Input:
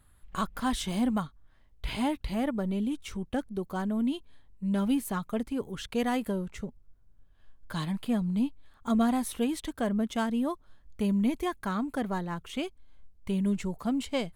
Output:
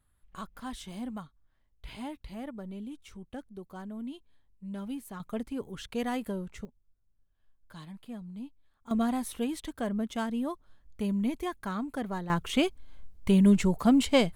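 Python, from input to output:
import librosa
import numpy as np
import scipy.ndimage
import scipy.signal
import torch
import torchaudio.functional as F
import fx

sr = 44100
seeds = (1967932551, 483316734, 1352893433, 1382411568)

y = fx.gain(x, sr, db=fx.steps((0.0, -10.5), (5.2, -3.5), (6.65, -13.5), (8.91, -3.0), (12.3, 7.5)))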